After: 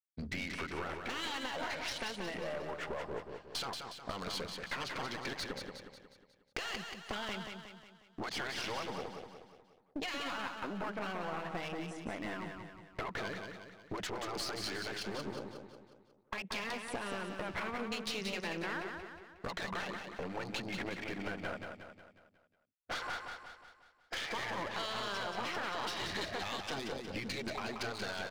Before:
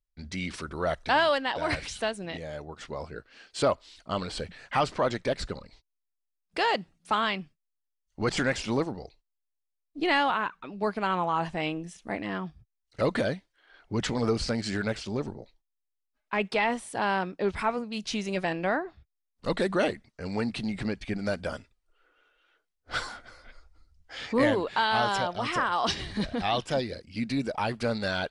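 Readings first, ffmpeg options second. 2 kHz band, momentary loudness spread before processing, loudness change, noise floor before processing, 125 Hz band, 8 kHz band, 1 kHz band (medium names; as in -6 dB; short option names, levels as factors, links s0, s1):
-8.0 dB, 13 LU, -10.5 dB, -82 dBFS, -12.0 dB, -5.0 dB, -11.5 dB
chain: -filter_complex "[0:a]afftfilt=real='re*lt(hypot(re,im),0.224)':imag='im*lt(hypot(re,im),0.224)':win_size=1024:overlap=0.75,afwtdn=0.00631,highpass=f=320:p=1,agate=range=0.0224:threshold=0.00141:ratio=3:detection=peak,alimiter=level_in=1.41:limit=0.0631:level=0:latency=1:release=174,volume=0.708,acompressor=threshold=0.00355:ratio=6,aeval=exprs='clip(val(0),-1,0.00237)':c=same,asplit=2[s0][s1];[s1]aecho=0:1:181|362|543|724|905|1086:0.531|0.26|0.127|0.0625|0.0306|0.015[s2];[s0][s2]amix=inputs=2:normalize=0,volume=4.47"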